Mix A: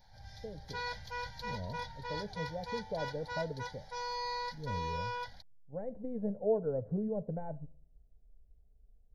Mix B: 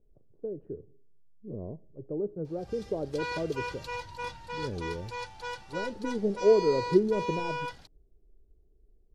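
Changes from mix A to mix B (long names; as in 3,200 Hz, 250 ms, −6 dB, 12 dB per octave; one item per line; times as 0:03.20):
background: entry +2.45 s
master: remove phaser with its sweep stopped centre 1,800 Hz, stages 8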